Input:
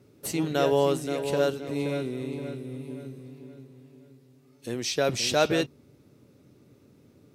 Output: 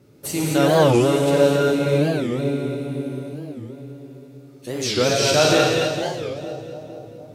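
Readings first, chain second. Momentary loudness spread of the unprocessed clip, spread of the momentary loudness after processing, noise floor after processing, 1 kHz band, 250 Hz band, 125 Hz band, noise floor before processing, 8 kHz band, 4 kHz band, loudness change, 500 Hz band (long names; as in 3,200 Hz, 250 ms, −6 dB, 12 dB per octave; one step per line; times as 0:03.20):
19 LU, 20 LU, −44 dBFS, +8.5 dB, +9.5 dB, +11.5 dB, −59 dBFS, +8.5 dB, +8.5 dB, +8.5 dB, +8.5 dB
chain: echo with a time of its own for lows and highs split 830 Hz, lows 458 ms, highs 217 ms, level −8 dB
reverb whose tail is shaped and stops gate 290 ms flat, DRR −3 dB
wow of a warped record 45 rpm, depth 250 cents
level +3 dB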